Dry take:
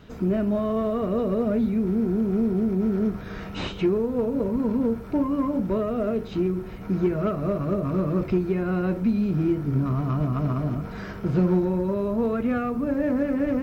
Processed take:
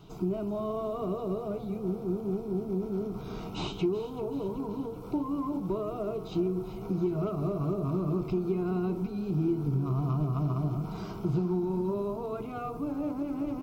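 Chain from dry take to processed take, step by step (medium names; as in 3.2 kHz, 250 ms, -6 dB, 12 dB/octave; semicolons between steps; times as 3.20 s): compression, threshold -24 dBFS, peak gain reduction 8 dB; static phaser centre 350 Hz, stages 8; frequency-shifting echo 381 ms, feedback 54%, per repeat +30 Hz, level -15 dB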